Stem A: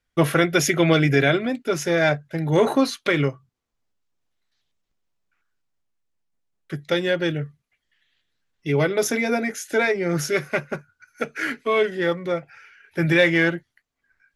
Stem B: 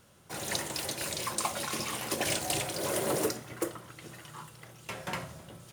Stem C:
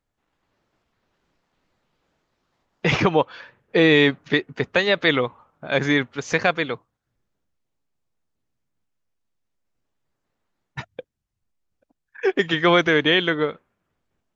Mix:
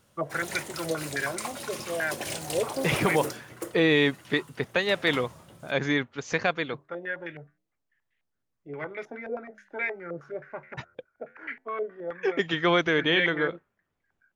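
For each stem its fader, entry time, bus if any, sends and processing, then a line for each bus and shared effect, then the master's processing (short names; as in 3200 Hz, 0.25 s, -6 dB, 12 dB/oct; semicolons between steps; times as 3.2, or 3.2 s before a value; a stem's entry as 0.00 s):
-11.5 dB, 0.00 s, no send, flange 0.23 Hz, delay 3.1 ms, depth 9.8 ms, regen -88%; tilt +1.5 dB/oct; stepped low-pass 9.5 Hz 540–2100 Hz
-3.5 dB, 0.00 s, no send, dry
-6.0 dB, 0.00 s, no send, dry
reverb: off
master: dry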